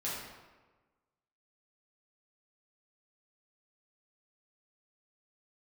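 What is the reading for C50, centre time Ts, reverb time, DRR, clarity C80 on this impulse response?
−0.5 dB, 78 ms, 1.3 s, −8.5 dB, 2.5 dB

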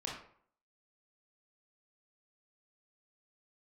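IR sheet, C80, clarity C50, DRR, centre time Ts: 7.0 dB, 2.5 dB, −3.5 dB, 42 ms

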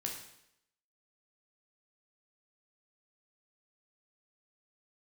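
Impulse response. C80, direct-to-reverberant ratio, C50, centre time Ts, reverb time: 8.0 dB, 0.0 dB, 5.0 dB, 33 ms, 0.80 s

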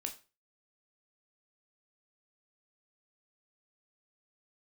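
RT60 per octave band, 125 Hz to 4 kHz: 0.35, 0.35, 0.35, 0.30, 0.30, 0.30 seconds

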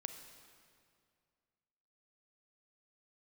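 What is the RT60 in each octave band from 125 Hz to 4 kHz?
2.5, 2.3, 2.3, 2.2, 2.0, 1.8 seconds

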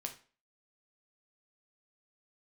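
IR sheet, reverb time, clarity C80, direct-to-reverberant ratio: 0.40 s, 17.0 dB, 3.0 dB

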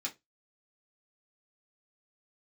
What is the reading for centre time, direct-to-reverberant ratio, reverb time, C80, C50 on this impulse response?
11 ms, −3.0 dB, non-exponential decay, 29.0 dB, 18.5 dB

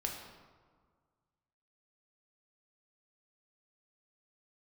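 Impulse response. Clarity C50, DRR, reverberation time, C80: 4.0 dB, 0.0 dB, 1.7 s, 6.0 dB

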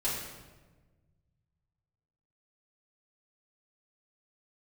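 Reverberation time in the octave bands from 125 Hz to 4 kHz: 2.6, 1.8, 1.4, 1.2, 1.0, 0.90 seconds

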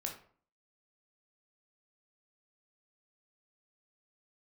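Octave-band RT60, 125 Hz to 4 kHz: 0.55, 0.55, 0.50, 0.50, 0.40, 0.30 seconds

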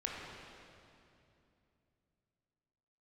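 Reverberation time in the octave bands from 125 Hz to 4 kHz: 3.9, 3.5, 2.9, 2.6, 2.4, 2.3 seconds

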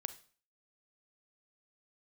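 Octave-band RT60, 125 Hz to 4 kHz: 0.40, 0.45, 0.45, 0.45, 0.45, 0.40 seconds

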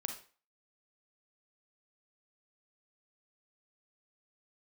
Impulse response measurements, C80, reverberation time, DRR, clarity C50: 12.5 dB, 0.40 s, 4.5 dB, 7.0 dB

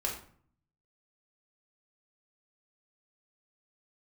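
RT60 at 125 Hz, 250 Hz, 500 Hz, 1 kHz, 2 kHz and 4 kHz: 1.0, 0.80, 0.55, 0.50, 0.45, 0.35 seconds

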